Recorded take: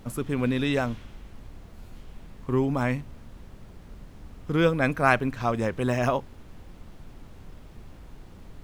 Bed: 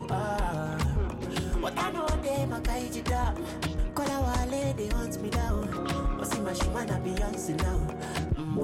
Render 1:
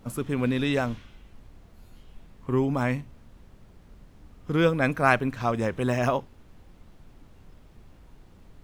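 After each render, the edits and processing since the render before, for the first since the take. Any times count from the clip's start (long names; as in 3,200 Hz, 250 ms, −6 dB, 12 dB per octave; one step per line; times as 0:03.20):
noise reduction from a noise print 6 dB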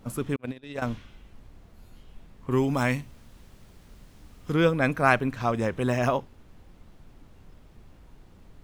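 0:00.36–0:00.82: noise gate −23 dBFS, range −54 dB
0:02.51–0:04.54: high-shelf EQ 2,400 Hz +9.5 dB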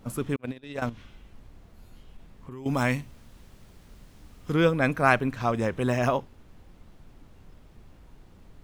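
0:00.89–0:02.66: downward compressor, threshold −38 dBFS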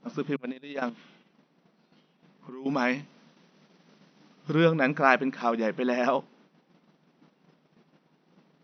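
brick-wall band-pass 150–6,100 Hz
noise gate −57 dBFS, range −8 dB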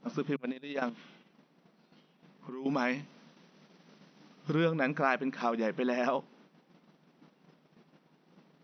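downward compressor 2 to 1, threshold −30 dBFS, peak gain reduction 9 dB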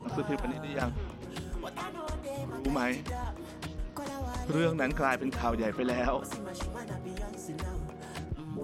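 mix in bed −8.5 dB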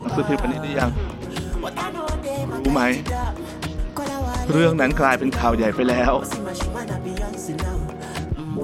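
level +11.5 dB
brickwall limiter −3 dBFS, peak gain reduction 1 dB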